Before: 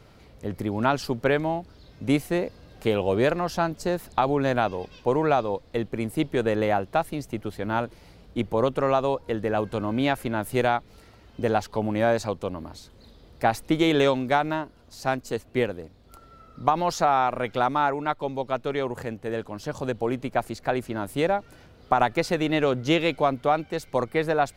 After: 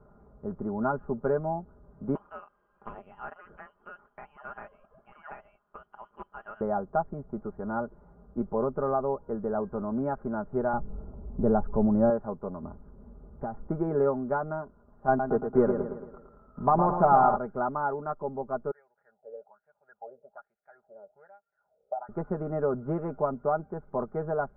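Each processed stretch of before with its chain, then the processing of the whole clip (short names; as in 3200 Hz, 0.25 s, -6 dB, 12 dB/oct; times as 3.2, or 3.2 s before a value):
2.15–6.61 inverted band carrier 3200 Hz + Doppler distortion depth 0.22 ms
10.73–12.1 G.711 law mismatch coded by mu + low-pass opened by the level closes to 640 Hz, open at -18.5 dBFS + tilt -3 dB/oct
12.63–13.68 low shelf 350 Hz +7.5 dB + compressor, threshold -25 dBFS
15.08–17.36 sample leveller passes 2 + feedback echo 0.112 s, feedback 49%, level -7 dB
18.71–22.09 wah 1.2 Hz 490–2800 Hz, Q 7.7 + fixed phaser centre 1100 Hz, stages 6
whole clip: Chebyshev low-pass 1400 Hz, order 5; comb 4.9 ms, depth 66%; dynamic EQ 1100 Hz, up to -3 dB, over -35 dBFS, Q 1.5; gain -5 dB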